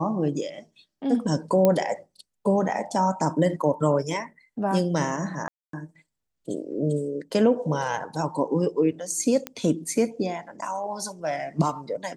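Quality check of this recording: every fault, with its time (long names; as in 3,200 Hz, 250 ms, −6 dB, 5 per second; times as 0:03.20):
0:01.65: click −8 dBFS
0:05.48–0:05.73: drop-out 253 ms
0:09.47: click −14 dBFS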